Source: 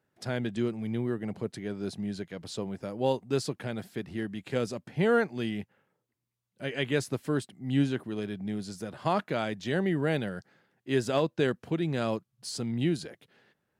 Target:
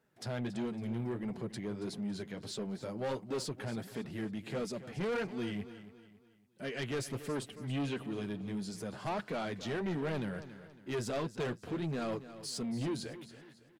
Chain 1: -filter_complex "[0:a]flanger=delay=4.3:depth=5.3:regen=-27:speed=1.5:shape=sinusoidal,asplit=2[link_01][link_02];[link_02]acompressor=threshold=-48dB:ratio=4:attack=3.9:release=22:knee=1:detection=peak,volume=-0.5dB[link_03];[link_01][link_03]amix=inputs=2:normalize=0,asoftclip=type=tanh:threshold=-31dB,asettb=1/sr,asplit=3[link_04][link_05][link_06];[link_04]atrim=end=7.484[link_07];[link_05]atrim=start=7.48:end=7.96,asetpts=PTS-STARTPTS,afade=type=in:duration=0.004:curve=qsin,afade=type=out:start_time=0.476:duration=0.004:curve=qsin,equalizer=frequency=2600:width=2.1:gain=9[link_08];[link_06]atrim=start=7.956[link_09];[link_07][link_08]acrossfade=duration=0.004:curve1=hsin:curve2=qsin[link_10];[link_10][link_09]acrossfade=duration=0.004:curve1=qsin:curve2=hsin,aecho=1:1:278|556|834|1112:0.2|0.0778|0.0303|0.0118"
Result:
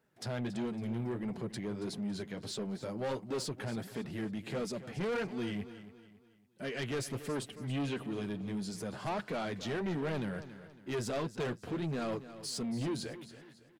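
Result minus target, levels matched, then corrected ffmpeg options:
downward compressor: peak gain reduction −7 dB
-filter_complex "[0:a]flanger=delay=4.3:depth=5.3:regen=-27:speed=1.5:shape=sinusoidal,asplit=2[link_01][link_02];[link_02]acompressor=threshold=-57.5dB:ratio=4:attack=3.9:release=22:knee=1:detection=peak,volume=-0.5dB[link_03];[link_01][link_03]amix=inputs=2:normalize=0,asoftclip=type=tanh:threshold=-31dB,asettb=1/sr,asplit=3[link_04][link_05][link_06];[link_04]atrim=end=7.484[link_07];[link_05]atrim=start=7.48:end=7.96,asetpts=PTS-STARTPTS,afade=type=in:duration=0.004:curve=qsin,afade=type=out:start_time=0.476:duration=0.004:curve=qsin,equalizer=frequency=2600:width=2.1:gain=9[link_08];[link_06]atrim=start=7.956[link_09];[link_07][link_08]acrossfade=duration=0.004:curve1=hsin:curve2=qsin[link_10];[link_10][link_09]acrossfade=duration=0.004:curve1=qsin:curve2=hsin,aecho=1:1:278|556|834|1112:0.2|0.0778|0.0303|0.0118"

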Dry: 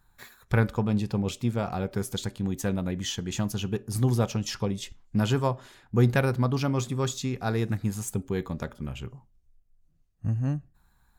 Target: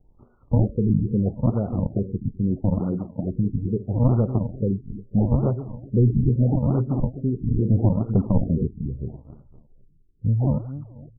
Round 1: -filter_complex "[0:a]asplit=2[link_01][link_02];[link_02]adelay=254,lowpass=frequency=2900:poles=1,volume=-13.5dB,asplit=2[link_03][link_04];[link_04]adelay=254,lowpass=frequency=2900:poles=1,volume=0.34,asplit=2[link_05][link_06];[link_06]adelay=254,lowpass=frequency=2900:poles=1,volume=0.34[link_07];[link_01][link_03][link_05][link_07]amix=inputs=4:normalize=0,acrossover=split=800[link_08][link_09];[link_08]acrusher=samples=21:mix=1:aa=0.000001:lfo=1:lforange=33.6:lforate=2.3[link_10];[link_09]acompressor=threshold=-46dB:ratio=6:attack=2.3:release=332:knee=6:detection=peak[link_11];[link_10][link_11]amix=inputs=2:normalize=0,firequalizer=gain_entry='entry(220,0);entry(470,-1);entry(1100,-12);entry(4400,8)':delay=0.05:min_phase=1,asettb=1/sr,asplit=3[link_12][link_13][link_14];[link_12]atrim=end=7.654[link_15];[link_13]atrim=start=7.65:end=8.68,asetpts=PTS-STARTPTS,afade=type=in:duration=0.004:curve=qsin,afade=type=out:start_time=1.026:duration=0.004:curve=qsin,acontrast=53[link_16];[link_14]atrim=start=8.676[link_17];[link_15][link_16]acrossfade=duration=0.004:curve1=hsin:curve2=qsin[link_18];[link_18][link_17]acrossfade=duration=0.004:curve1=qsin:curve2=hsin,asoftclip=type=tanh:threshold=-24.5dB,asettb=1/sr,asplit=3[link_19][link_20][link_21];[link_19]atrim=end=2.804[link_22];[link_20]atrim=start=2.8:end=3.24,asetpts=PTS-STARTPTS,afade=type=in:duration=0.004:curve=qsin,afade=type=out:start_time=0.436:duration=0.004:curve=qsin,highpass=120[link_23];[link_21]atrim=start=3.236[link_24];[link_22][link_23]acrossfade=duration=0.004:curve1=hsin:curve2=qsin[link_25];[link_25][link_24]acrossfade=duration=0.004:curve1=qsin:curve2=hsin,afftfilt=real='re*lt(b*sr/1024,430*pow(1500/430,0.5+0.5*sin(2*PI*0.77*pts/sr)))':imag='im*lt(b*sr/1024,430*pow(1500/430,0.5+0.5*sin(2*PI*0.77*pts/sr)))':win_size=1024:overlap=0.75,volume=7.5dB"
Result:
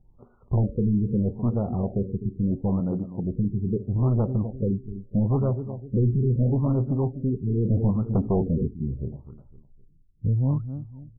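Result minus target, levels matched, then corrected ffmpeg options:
sample-and-hold swept by an LFO: distortion −10 dB; soft clipping: distortion +6 dB
-filter_complex "[0:a]asplit=2[link_01][link_02];[link_02]adelay=254,lowpass=frequency=2900:poles=1,volume=-13.5dB,asplit=2[link_03][link_04];[link_04]adelay=254,lowpass=frequency=2900:poles=1,volume=0.34,asplit=2[link_05][link_06];[link_06]adelay=254,lowpass=frequency=2900:poles=1,volume=0.34[link_07];[link_01][link_03][link_05][link_07]amix=inputs=4:normalize=0,acrossover=split=800[link_08][link_09];[link_08]acrusher=samples=69:mix=1:aa=0.000001:lfo=1:lforange=110:lforate=2.3[link_10];[link_09]acompressor=threshold=-46dB:ratio=6:attack=2.3:release=332:knee=6:detection=peak[link_11];[link_10][link_11]amix=inputs=2:normalize=0,firequalizer=gain_entry='entry(220,0);entry(470,-1);entry(1100,-12);entry(4400,8)':delay=0.05:min_phase=1,asettb=1/sr,asplit=3[link_12][link_13][link_14];[link_12]atrim=end=7.654[link_15];[link_13]atrim=start=7.65:end=8.68,asetpts=PTS-STARTPTS,afade=type=in:duration=0.004:curve=qsin,afade=type=out:start_time=1.026:duration=0.004:curve=qsin,acontrast=53[link_16];[link_14]atrim=start=8.676[link_17];[link_15][link_16]acrossfade=duration=0.004:curve1=hsin:curve2=qsin[link_18];[link_18][link_17]acrossfade=duration=0.004:curve1=qsin:curve2=hsin,asoftclip=type=tanh:threshold=-18dB,asettb=1/sr,asplit=3[link_19][link_20][link_21];[link_19]atrim=end=2.804[link_22];[link_20]atrim=start=2.8:end=3.24,asetpts=PTS-STARTPTS,afade=type=in:duration=0.004:curve=qsin,afade=type=out:start_time=0.436:duration=0.004:curve=qsin,highpass=120[link_23];[link_21]atrim=start=3.236[link_24];[link_22][link_23]acrossfade=duration=0.004:curve1=hsin:curve2=qsin[link_25];[link_25][link_24]acrossfade=duration=0.004:curve1=qsin:curve2=hsin,afftfilt=real='re*lt(b*sr/1024,430*pow(1500/430,0.5+0.5*sin(2*PI*0.77*pts/sr)))':imag='im*lt(b*sr/1024,430*pow(1500/430,0.5+0.5*sin(2*PI*0.77*pts/sr)))':win_size=1024:overlap=0.75,volume=7.5dB"

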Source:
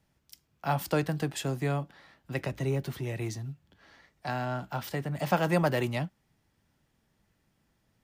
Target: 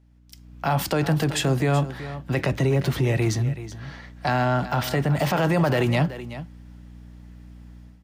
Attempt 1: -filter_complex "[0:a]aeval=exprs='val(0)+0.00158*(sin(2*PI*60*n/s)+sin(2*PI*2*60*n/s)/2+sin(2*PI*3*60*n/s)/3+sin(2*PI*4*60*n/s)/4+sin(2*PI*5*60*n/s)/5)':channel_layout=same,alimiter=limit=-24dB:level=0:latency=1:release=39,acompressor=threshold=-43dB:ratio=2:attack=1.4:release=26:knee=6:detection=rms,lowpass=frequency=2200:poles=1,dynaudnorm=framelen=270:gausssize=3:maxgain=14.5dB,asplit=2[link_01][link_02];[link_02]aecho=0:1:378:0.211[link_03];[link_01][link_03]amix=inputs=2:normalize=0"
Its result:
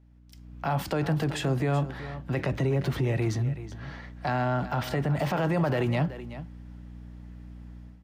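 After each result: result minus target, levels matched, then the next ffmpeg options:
8,000 Hz band −6.0 dB; downward compressor: peak gain reduction +4.5 dB
-filter_complex "[0:a]aeval=exprs='val(0)+0.00158*(sin(2*PI*60*n/s)+sin(2*PI*2*60*n/s)/2+sin(2*PI*3*60*n/s)/3+sin(2*PI*4*60*n/s)/4+sin(2*PI*5*60*n/s)/5)':channel_layout=same,alimiter=limit=-24dB:level=0:latency=1:release=39,acompressor=threshold=-43dB:ratio=2:attack=1.4:release=26:knee=6:detection=rms,lowpass=frequency=6200:poles=1,dynaudnorm=framelen=270:gausssize=3:maxgain=14.5dB,asplit=2[link_01][link_02];[link_02]aecho=0:1:378:0.211[link_03];[link_01][link_03]amix=inputs=2:normalize=0"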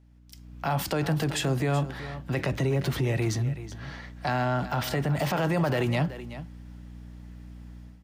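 downward compressor: peak gain reduction +4.5 dB
-filter_complex "[0:a]aeval=exprs='val(0)+0.00158*(sin(2*PI*60*n/s)+sin(2*PI*2*60*n/s)/2+sin(2*PI*3*60*n/s)/3+sin(2*PI*4*60*n/s)/4+sin(2*PI*5*60*n/s)/5)':channel_layout=same,alimiter=limit=-24dB:level=0:latency=1:release=39,acompressor=threshold=-33.5dB:ratio=2:attack=1.4:release=26:knee=6:detection=rms,lowpass=frequency=6200:poles=1,dynaudnorm=framelen=270:gausssize=3:maxgain=14.5dB,asplit=2[link_01][link_02];[link_02]aecho=0:1:378:0.211[link_03];[link_01][link_03]amix=inputs=2:normalize=0"

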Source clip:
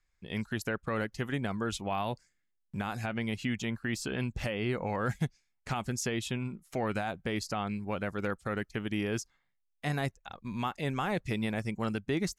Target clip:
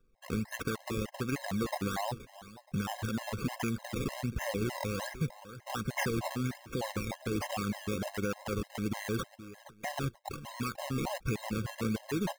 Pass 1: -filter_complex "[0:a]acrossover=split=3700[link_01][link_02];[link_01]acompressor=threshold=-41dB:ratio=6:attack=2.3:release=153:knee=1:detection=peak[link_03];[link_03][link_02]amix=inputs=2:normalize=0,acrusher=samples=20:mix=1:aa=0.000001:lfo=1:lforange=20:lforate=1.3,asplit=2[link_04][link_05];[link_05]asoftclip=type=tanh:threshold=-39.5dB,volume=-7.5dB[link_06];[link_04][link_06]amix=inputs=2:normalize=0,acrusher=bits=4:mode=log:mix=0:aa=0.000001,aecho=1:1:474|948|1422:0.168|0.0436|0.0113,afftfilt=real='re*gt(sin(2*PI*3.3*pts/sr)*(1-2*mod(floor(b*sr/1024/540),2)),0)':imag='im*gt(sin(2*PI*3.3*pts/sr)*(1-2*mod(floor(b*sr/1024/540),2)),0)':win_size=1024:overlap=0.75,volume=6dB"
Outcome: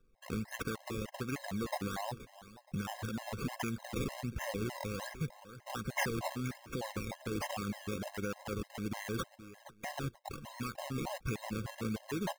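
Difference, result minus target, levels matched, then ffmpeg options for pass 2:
downward compressor: peak gain reduction +5 dB
-filter_complex "[0:a]acrossover=split=3700[link_01][link_02];[link_01]acompressor=threshold=-35dB:ratio=6:attack=2.3:release=153:knee=1:detection=peak[link_03];[link_03][link_02]amix=inputs=2:normalize=0,acrusher=samples=20:mix=1:aa=0.000001:lfo=1:lforange=20:lforate=1.3,asplit=2[link_04][link_05];[link_05]asoftclip=type=tanh:threshold=-39.5dB,volume=-7.5dB[link_06];[link_04][link_06]amix=inputs=2:normalize=0,acrusher=bits=4:mode=log:mix=0:aa=0.000001,aecho=1:1:474|948|1422:0.168|0.0436|0.0113,afftfilt=real='re*gt(sin(2*PI*3.3*pts/sr)*(1-2*mod(floor(b*sr/1024/540),2)),0)':imag='im*gt(sin(2*PI*3.3*pts/sr)*(1-2*mod(floor(b*sr/1024/540),2)),0)':win_size=1024:overlap=0.75,volume=6dB"

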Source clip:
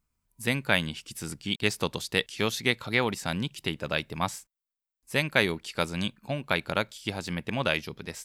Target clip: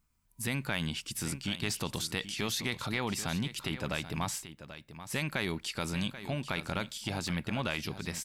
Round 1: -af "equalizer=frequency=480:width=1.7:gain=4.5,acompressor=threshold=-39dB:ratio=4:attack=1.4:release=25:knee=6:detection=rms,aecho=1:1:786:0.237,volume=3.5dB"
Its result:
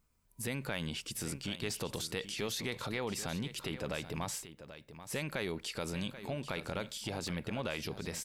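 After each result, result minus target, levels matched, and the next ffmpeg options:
downward compressor: peak gain reduction +6 dB; 500 Hz band +4.5 dB
-af "equalizer=frequency=480:width=1.7:gain=4.5,acompressor=threshold=-32.5dB:ratio=4:attack=1.4:release=25:knee=6:detection=rms,aecho=1:1:786:0.237,volume=3.5dB"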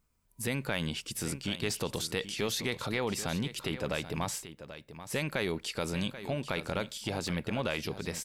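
500 Hz band +4.5 dB
-af "equalizer=frequency=480:width=1.7:gain=-4.5,acompressor=threshold=-32.5dB:ratio=4:attack=1.4:release=25:knee=6:detection=rms,aecho=1:1:786:0.237,volume=3.5dB"

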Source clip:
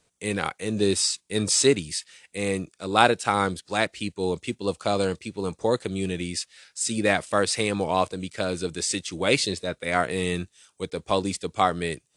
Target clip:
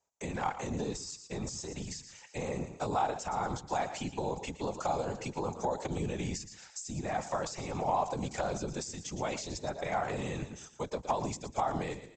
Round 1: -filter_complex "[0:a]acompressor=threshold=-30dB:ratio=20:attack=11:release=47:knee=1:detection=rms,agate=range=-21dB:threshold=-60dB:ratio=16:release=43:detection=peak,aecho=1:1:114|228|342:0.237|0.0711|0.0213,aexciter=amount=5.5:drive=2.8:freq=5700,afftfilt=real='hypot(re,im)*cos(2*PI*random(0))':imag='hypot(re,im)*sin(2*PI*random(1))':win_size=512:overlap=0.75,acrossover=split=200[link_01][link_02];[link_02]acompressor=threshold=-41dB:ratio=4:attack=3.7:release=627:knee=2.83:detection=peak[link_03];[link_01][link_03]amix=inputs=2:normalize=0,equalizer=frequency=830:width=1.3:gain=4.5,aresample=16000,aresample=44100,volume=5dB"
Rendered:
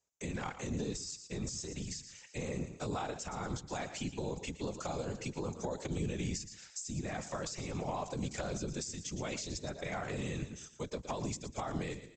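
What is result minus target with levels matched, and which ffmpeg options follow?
1,000 Hz band −6.0 dB
-filter_complex "[0:a]acompressor=threshold=-30dB:ratio=20:attack=11:release=47:knee=1:detection=rms,agate=range=-21dB:threshold=-60dB:ratio=16:release=43:detection=peak,aecho=1:1:114|228|342:0.237|0.0711|0.0213,aexciter=amount=5.5:drive=2.8:freq=5700,afftfilt=real='hypot(re,im)*cos(2*PI*random(0))':imag='hypot(re,im)*sin(2*PI*random(1))':win_size=512:overlap=0.75,acrossover=split=200[link_01][link_02];[link_02]acompressor=threshold=-41dB:ratio=4:attack=3.7:release=627:knee=2.83:detection=peak[link_03];[link_01][link_03]amix=inputs=2:normalize=0,equalizer=frequency=830:width=1.3:gain=16,aresample=16000,aresample=44100,volume=5dB"

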